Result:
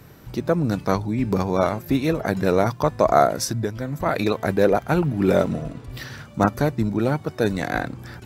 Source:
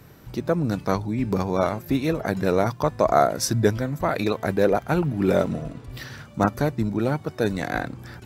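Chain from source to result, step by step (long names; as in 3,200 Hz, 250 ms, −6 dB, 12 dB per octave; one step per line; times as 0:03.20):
0:03.34–0:04.06: downward compressor 6 to 1, threshold −24 dBFS, peak gain reduction 11 dB
level +2 dB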